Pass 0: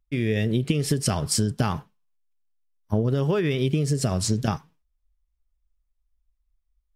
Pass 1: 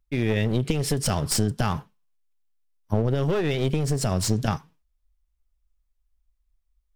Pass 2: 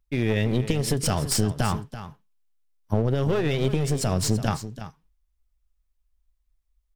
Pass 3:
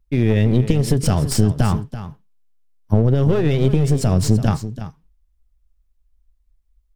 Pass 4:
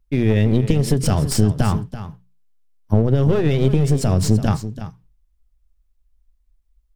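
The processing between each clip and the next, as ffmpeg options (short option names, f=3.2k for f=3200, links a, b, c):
-af "aeval=exprs='clip(val(0),-1,0.0447)':c=same,volume=1.5dB"
-af "aecho=1:1:334:0.237"
-af "lowshelf=f=470:g=9.5"
-af "bandreject=f=60:t=h:w=6,bandreject=f=120:t=h:w=6,bandreject=f=180:t=h:w=6"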